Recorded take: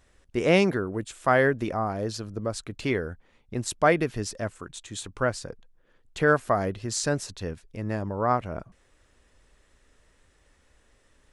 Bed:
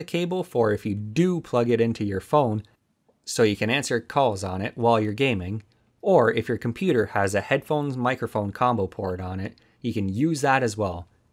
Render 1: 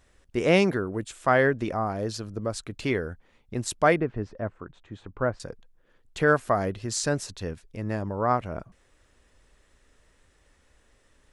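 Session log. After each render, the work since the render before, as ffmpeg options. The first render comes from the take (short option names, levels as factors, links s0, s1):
-filter_complex "[0:a]asettb=1/sr,asplit=3[s0][s1][s2];[s0]atrim=end=1.244[s3];[s1]atrim=start=1.24:end=1.68,asetpts=PTS-STARTPTS,afade=t=in:d=0.004:c=qsin,afade=t=out:st=0.436:d=0.004:c=qsin,lowpass=8200[s4];[s2]atrim=start=1.676[s5];[s3][s4]acrossfade=d=0.004:c1=hsin:c2=qsin[s6];[s6][s5]acrossfade=d=0.004:c1=qsin:c2=hsin,asettb=1/sr,asplit=3[s7][s8][s9];[s7]atrim=end=3.964[s10];[s8]atrim=start=3.96:end=5.4,asetpts=PTS-STARTPTS,afade=t=in:d=0.004:c=qsin,afade=t=out:st=1.436:d=0.004:c=qsin,lowpass=1400[s11];[s9]atrim=start=5.396[s12];[s10][s11]acrossfade=d=0.004:c1=hsin:c2=qsin[s13];[s13][s12]acrossfade=d=0.004:c1=qsin:c2=hsin"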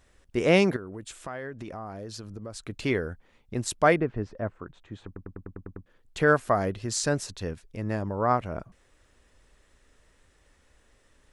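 -filter_complex "[0:a]asettb=1/sr,asplit=3[s0][s1][s2];[s0]atrim=end=0.764[s3];[s1]atrim=start=0.76:end=2.63,asetpts=PTS-STARTPTS,afade=t=in:d=0.004:c=qsin,afade=t=out:st=1.866:d=0.004:c=qsin,acompressor=threshold=0.0158:ratio=4:attack=3.2:release=140:knee=1:detection=peak[s4];[s2]atrim=start=2.626[s5];[s3][s4]acrossfade=d=0.004:c1=hsin:c2=qsin[s6];[s6][s5]acrossfade=d=0.004:c1=qsin:c2=hsin,asplit=9[s7][s8][s9][s10][s11][s12][s13][s14][s15];[s7]atrim=end=5.162[s16];[s8]atrim=start=5.058:end=5.162[s17];[s9]atrim=start=5.058:end=5.162[s18];[s10]atrim=start=5.058:end=5.162[s19];[s11]atrim=start=5.058:end=5.162[s20];[s12]atrim=start=5.058:end=5.162[s21];[s13]atrim=start=5.058:end=5.162[s22];[s14]atrim=start=5.058:end=5.162[s23];[s15]atrim=start=5.858[s24];[s16][s17]acrossfade=d=0.004:c1=hsin:c2=hsin[s25];[s25][s18]acrossfade=d=0.004:c1=hsin:c2=hsin[s26];[s26][s19]acrossfade=d=0.004:c1=hsin:c2=hsin[s27];[s27][s20]acrossfade=d=0.004:c1=hsin:c2=hsin[s28];[s28][s21]acrossfade=d=0.004:c1=hsin:c2=hsin[s29];[s29][s22]acrossfade=d=0.004:c1=hsin:c2=hsin[s30];[s30][s23]acrossfade=d=0.004:c1=hsin:c2=hsin[s31];[s31][s24]acrossfade=d=0.004:c1=hsin:c2=hsin"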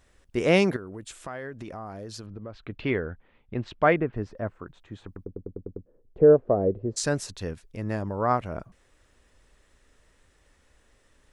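-filter_complex "[0:a]asettb=1/sr,asplit=3[s0][s1][s2];[s0]atrim=end=2.264[s3];[s1]atrim=start=2.26:end=4.13,asetpts=PTS-STARTPTS,afade=t=in:d=0.004:c=qsin,afade=t=out:st=1.866:d=0.004:c=qsin,lowpass=f=3300:w=0.5412,lowpass=f=3300:w=1.3066[s4];[s2]atrim=start=4.126[s5];[s3][s4]acrossfade=d=0.004:c1=hsin:c2=qsin[s6];[s6][s5]acrossfade=d=0.004:c1=qsin:c2=hsin,asplit=3[s7][s8][s9];[s7]afade=t=out:st=5.24:d=0.02[s10];[s8]lowpass=f=480:t=q:w=2.7,afade=t=in:st=5.24:d=0.02,afade=t=out:st=6.96:d=0.02[s11];[s9]afade=t=in:st=6.96:d=0.02[s12];[s10][s11][s12]amix=inputs=3:normalize=0"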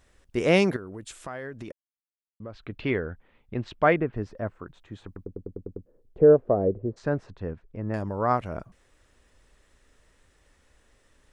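-filter_complex "[0:a]asettb=1/sr,asplit=3[s0][s1][s2];[s0]atrim=end=6.684[s3];[s1]atrim=start=6.68:end=7.94,asetpts=PTS-STARTPTS,afade=t=in:d=0.004:c=qsin,afade=t=out:st=1.256:d=0.004:c=qsin,lowpass=1400[s4];[s2]atrim=start=7.936[s5];[s3][s4]acrossfade=d=0.004:c1=hsin:c2=qsin[s6];[s6][s5]acrossfade=d=0.004:c1=qsin:c2=hsin,asplit=3[s7][s8][s9];[s7]atrim=end=1.72,asetpts=PTS-STARTPTS,afade=t=out:st=1.716:d=0.004:c=hsin[s10];[s8]atrim=start=1.72:end=2.4,asetpts=PTS-STARTPTS,volume=0[s11];[s9]atrim=start=2.4,asetpts=PTS-STARTPTS,afade=t=in:d=0.004:c=hsin[s12];[s10][s11][s12]concat=n=3:v=0:a=1"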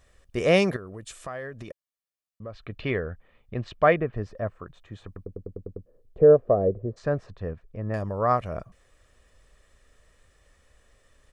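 -af "aecho=1:1:1.7:0.38"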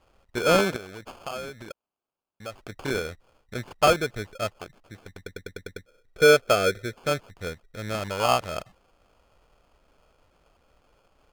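-filter_complex "[0:a]acrusher=samples=23:mix=1:aa=0.000001,asplit=2[s0][s1];[s1]highpass=f=720:p=1,volume=2.51,asoftclip=type=tanh:threshold=0.447[s2];[s0][s2]amix=inputs=2:normalize=0,lowpass=f=4600:p=1,volume=0.501"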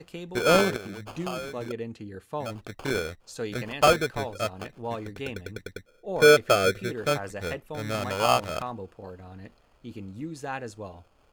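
-filter_complex "[1:a]volume=0.211[s0];[0:a][s0]amix=inputs=2:normalize=0"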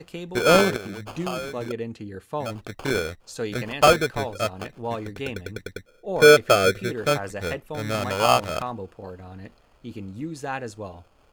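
-af "volume=1.5"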